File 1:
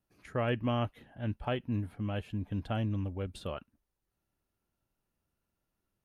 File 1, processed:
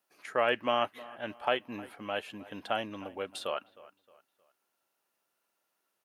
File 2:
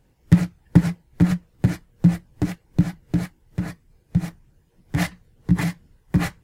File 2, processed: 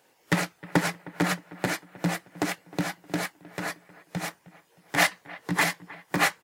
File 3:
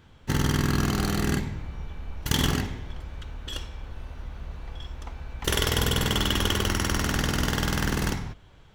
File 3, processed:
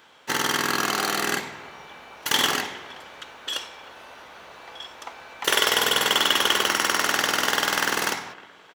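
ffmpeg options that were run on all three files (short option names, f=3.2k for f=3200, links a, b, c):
-filter_complex "[0:a]highpass=570,acrossover=split=3400[a][b];[a]aecho=1:1:311|622|933:0.106|0.0392|0.0145[c];[b]asoftclip=type=tanh:threshold=-29dB[d];[c][d]amix=inputs=2:normalize=0,volume=8dB"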